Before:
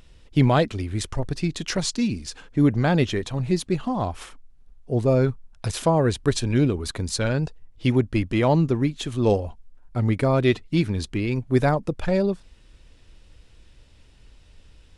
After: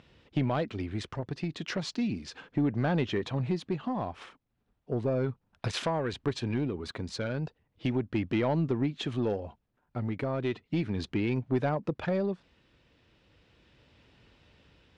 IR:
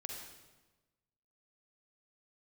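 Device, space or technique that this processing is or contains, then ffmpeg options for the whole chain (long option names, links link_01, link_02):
AM radio: -filter_complex "[0:a]highpass=120,lowpass=3500,acompressor=threshold=-23dB:ratio=4,asoftclip=type=tanh:threshold=-18dB,tremolo=f=0.35:d=0.39,asettb=1/sr,asplit=3[link_01][link_02][link_03];[link_01]atrim=end=5.684[link_04];[link_02]atrim=start=5.68:end=6.13,asetpts=PTS-STARTPTS,afade=type=in:duration=0.004:curve=qsin,afade=type=out:start_time=0.446:duration=0.004:curve=qsin,tiltshelf=frequency=930:gain=-4.5[link_05];[link_03]atrim=start=6.126[link_06];[link_04][link_05]acrossfade=duration=0.004:curve1=hsin:curve2=qsin[link_07];[link_07][link_06]acrossfade=duration=0.004:curve1=qsin:curve2=hsin"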